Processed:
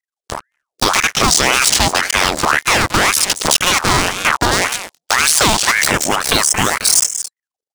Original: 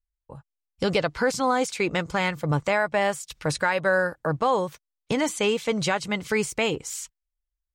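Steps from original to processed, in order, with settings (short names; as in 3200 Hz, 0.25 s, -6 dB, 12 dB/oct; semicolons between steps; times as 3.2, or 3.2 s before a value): cycle switcher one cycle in 2, muted; spectral gain 6.18–6.41, 790–4500 Hz +10 dB; echo 0.222 s -19 dB; compressor 2:1, threshold -33 dBFS, peak gain reduction 9.5 dB; band shelf 6000 Hz +14 dB; de-hum 131.4 Hz, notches 2; sample leveller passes 5; spectral gain 5.83–7.33, 2800–5700 Hz -14 dB; ring modulator with a swept carrier 1200 Hz, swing 65%, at 1.9 Hz; gain +6 dB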